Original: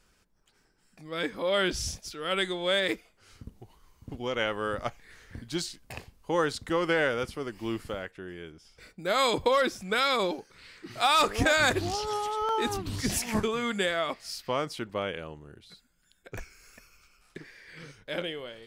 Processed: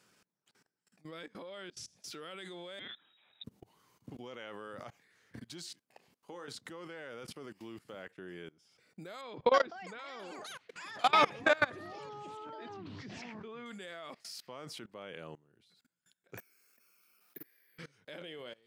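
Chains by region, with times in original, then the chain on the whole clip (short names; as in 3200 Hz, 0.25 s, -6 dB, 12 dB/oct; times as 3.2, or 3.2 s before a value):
1.26–2.04 LPF 9900 Hz + compressor 16:1, threshold -40 dBFS
2.79–3.44 inverted band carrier 3800 Hz + compressor 10:1, threshold -32 dBFS
5.79–6.48 bell 96 Hz -14 dB 1 oct + compressor 1.5:1, threshold -53 dBFS + doubler 28 ms -10 dB
9.21–13.66 Gaussian blur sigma 2.2 samples + echoes that change speed 0.328 s, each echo +6 st, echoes 3, each echo -6 dB
16.38–17.78 ladder high-pass 160 Hz, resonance 20% + careless resampling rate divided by 3×, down filtered, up zero stuff
whole clip: HPF 120 Hz 24 dB/oct; level quantiser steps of 23 dB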